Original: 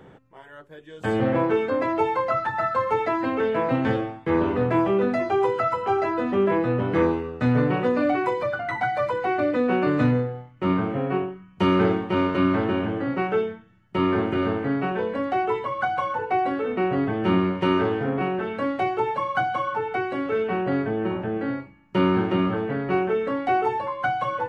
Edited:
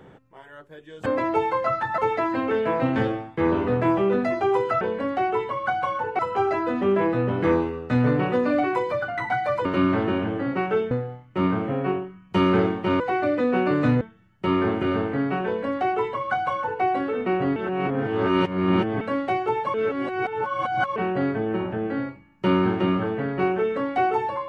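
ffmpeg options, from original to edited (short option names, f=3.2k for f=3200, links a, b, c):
-filter_complex "[0:a]asplit=13[a][b][c][d][e][f][g][h][i][j][k][l][m];[a]atrim=end=1.062[n];[b]atrim=start=1.698:end=2.622[o];[c]atrim=start=2.868:end=5.702[p];[d]atrim=start=14.958:end=16.342[q];[e]atrim=start=5.698:end=9.162[r];[f]atrim=start=12.258:end=13.522[s];[g]atrim=start=10.168:end=12.262[t];[h]atrim=start=9.158:end=10.172[u];[i]atrim=start=13.518:end=17.072[v];[j]atrim=start=17.068:end=18.522,asetpts=PTS-STARTPTS,areverse[w];[k]atrim=start=18.518:end=19.252[x];[l]atrim=start=19.248:end=20.472,asetpts=PTS-STARTPTS,areverse[y];[m]atrim=start=20.468[z];[n][o]acrossfade=d=0.004:c1=hsin:c2=hsin[aa];[aa][p]acrossfade=d=0.004:c1=hsin:c2=hsin[ab];[ab][q]acrossfade=d=0.004:c1=hsin:c2=hsin[ac];[ac][r]acrossfade=d=0.004:c1=hsin:c2=hsin[ad];[ad][s]acrossfade=d=0.004:c1=hsin:c2=hsin[ae];[ae][t]acrossfade=d=0.004:c1=hsin:c2=hsin[af];[af][u]acrossfade=d=0.004:c1=hsin:c2=hsin[ag];[ag][v]acrossfade=d=0.004:c1=hsin:c2=hsin[ah];[ah][w]acrossfade=d=0.004:c1=hsin:c2=hsin[ai];[ai][x]acrossfade=d=0.004:c1=hsin:c2=hsin[aj];[aj][y]acrossfade=d=0.004:c1=hsin:c2=hsin[ak];[ak][z]acrossfade=d=0.004:c1=hsin:c2=hsin"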